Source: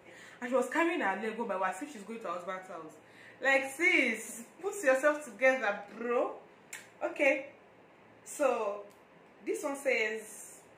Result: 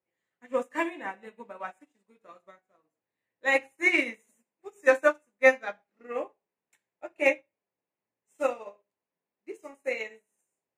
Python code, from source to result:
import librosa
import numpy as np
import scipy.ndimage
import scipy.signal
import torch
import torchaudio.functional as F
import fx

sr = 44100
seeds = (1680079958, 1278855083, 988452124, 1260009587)

y = fx.upward_expand(x, sr, threshold_db=-49.0, expansion=2.5)
y = F.gain(torch.from_numpy(y), 8.0).numpy()